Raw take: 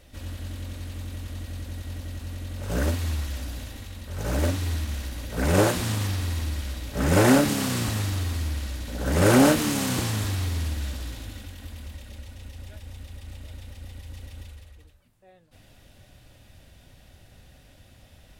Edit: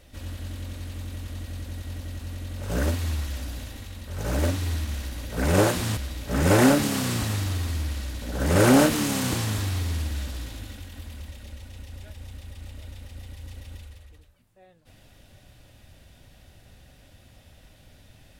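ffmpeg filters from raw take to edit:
-filter_complex "[0:a]asplit=2[a][b];[a]atrim=end=5.972[c];[b]atrim=start=6.628[d];[c][d]acrossfade=d=0.004:c1=hsin:c2=hsin"

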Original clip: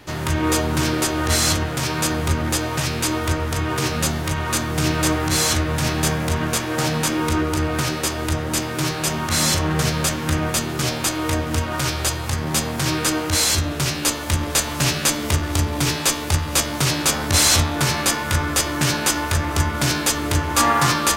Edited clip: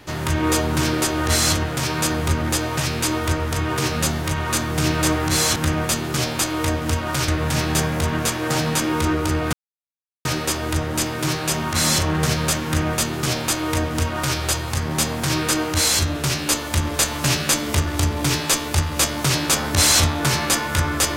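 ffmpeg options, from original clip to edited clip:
-filter_complex "[0:a]asplit=4[a][b][c][d];[a]atrim=end=5.562[e];[b]atrim=start=10.208:end=11.932[f];[c]atrim=start=5.558:end=7.81,asetpts=PTS-STARTPTS,afade=t=out:st=2.248:d=0.004:c=hsin,apad=pad_dur=0.72[g];[d]atrim=start=7.81,asetpts=PTS-STARTPTS,afade=t=in:d=0.004:c=hsin[h];[e][f]acrossfade=d=0.004:c1=hsin:c2=hsin[i];[g][h]concat=n=2:v=0:a=1[j];[i][j]acrossfade=d=0.004:c1=hsin:c2=hsin"

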